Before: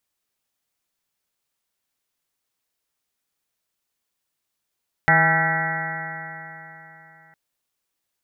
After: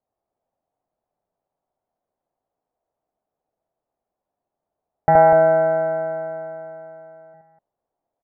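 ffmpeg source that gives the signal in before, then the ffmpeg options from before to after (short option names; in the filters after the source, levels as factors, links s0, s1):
-f lavfi -i "aevalsrc='0.0891*pow(10,-3*t/3.49)*sin(2*PI*159.15*t)+0.02*pow(10,-3*t/3.49)*sin(2*PI*319.21*t)+0.02*pow(10,-3*t/3.49)*sin(2*PI*481.06*t)+0.0531*pow(10,-3*t/3.49)*sin(2*PI*645.59*t)+0.119*pow(10,-3*t/3.49)*sin(2*PI*813.66*t)+0.0251*pow(10,-3*t/3.49)*sin(2*PI*986.09*t)+0.01*pow(10,-3*t/3.49)*sin(2*PI*1163.66*t)+0.0708*pow(10,-3*t/3.49)*sin(2*PI*1347.12*t)+0.1*pow(10,-3*t/3.49)*sin(2*PI*1537.18*t)+0.0631*pow(10,-3*t/3.49)*sin(2*PI*1734.49*t)+0.158*pow(10,-3*t/3.49)*sin(2*PI*1939.66*t)+0.0376*pow(10,-3*t/3.49)*sin(2*PI*2153.25*t)':d=2.26:s=44100"
-filter_complex "[0:a]lowpass=f=700:t=q:w=3.7,asplit=2[s0][s1];[s1]aecho=0:1:72.89|247.8:1|0.501[s2];[s0][s2]amix=inputs=2:normalize=0"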